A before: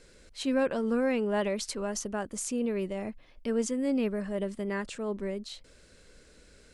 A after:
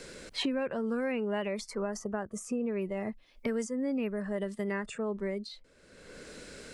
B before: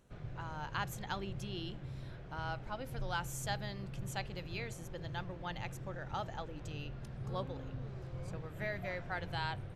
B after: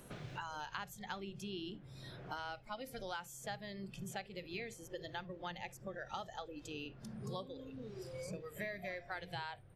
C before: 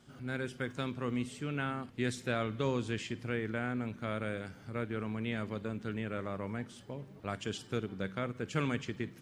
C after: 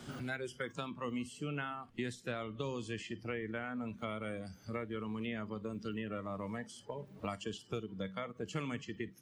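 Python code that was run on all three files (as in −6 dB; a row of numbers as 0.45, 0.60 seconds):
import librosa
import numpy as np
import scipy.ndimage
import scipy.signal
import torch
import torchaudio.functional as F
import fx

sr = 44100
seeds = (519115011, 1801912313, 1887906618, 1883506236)

y = fx.noise_reduce_blind(x, sr, reduce_db=15)
y = fx.band_squash(y, sr, depth_pct=100)
y = y * librosa.db_to_amplitude(-3.0)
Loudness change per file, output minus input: −3.0, −4.0, −4.0 LU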